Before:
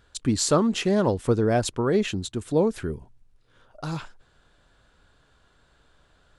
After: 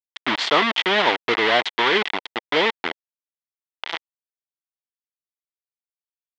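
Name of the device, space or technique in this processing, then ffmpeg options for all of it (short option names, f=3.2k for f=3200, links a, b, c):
hand-held game console: -af "acrusher=bits=3:mix=0:aa=0.000001,highpass=470,equalizer=f=540:t=q:w=4:g=-6,equalizer=f=900:t=q:w=4:g=3,equalizer=f=2k:t=q:w=4:g=8,equalizer=f=3.3k:t=q:w=4:g=8,lowpass=f=4.1k:w=0.5412,lowpass=f=4.1k:w=1.3066,volume=5dB"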